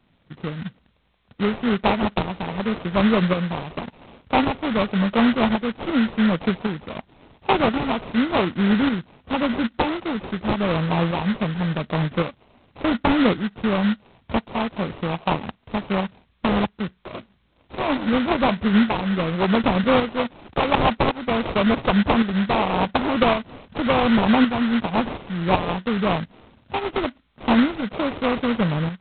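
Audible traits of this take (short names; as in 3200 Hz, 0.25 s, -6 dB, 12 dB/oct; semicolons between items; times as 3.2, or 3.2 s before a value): aliases and images of a low sample rate 1700 Hz, jitter 20%; tremolo saw up 0.9 Hz, depth 55%; G.726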